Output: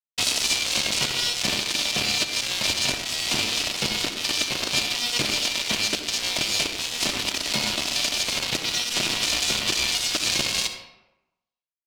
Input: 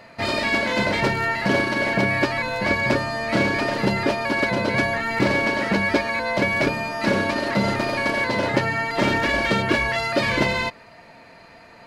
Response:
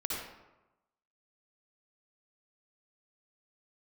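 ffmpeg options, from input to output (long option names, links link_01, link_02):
-filter_complex "[0:a]adynamicequalizer=threshold=0.00891:dfrequency=1400:dqfactor=5.6:tfrequency=1400:tqfactor=5.6:attack=5:release=100:ratio=0.375:range=1.5:mode=boostabove:tftype=bell,acrossover=split=130[link_01][link_02];[link_02]acompressor=threshold=-25dB:ratio=6[link_03];[link_01][link_03]amix=inputs=2:normalize=0,aeval=exprs='0.211*(cos(1*acos(clip(val(0)/0.211,-1,1)))-cos(1*PI/2))+0.0473*(cos(7*acos(clip(val(0)/0.211,-1,1)))-cos(7*PI/2))+0.00168*(cos(8*acos(clip(val(0)/0.211,-1,1)))-cos(8*PI/2))':channel_layout=same,aexciter=amount=6.1:drive=4.8:freq=2400,acrusher=bits=3:mix=0:aa=0.5,adynamicsmooth=sensitivity=6:basefreq=3200,asetrate=46722,aresample=44100,atempo=0.943874,asplit=2[link_04][link_05];[1:a]atrim=start_sample=2205[link_06];[link_05][link_06]afir=irnorm=-1:irlink=0,volume=-7.5dB[link_07];[link_04][link_07]amix=inputs=2:normalize=0,volume=-6dB"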